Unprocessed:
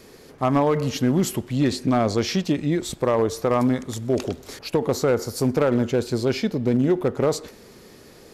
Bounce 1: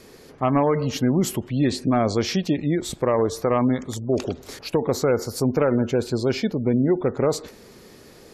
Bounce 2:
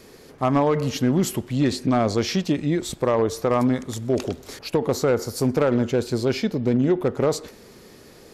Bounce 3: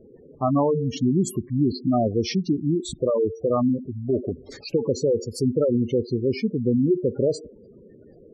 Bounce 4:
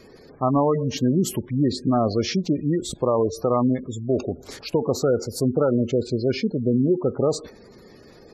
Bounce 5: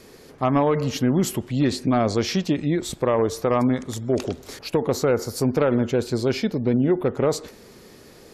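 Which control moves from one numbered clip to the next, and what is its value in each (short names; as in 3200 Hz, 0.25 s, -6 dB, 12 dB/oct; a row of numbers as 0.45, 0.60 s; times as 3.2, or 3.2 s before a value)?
spectral gate, under each frame's peak: -35, -60, -10, -20, -45 dB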